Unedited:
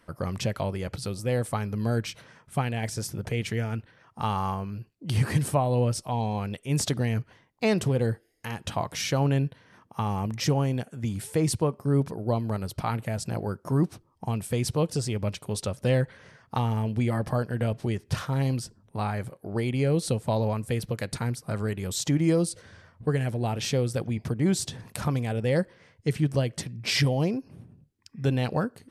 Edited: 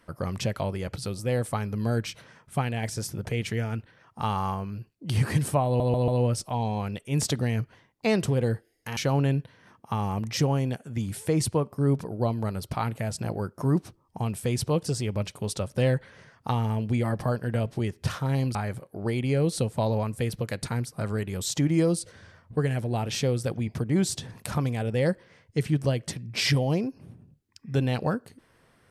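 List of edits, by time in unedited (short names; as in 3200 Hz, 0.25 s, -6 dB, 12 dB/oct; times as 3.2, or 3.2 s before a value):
5.66 stutter 0.14 s, 4 plays
8.55–9.04 cut
18.62–19.05 cut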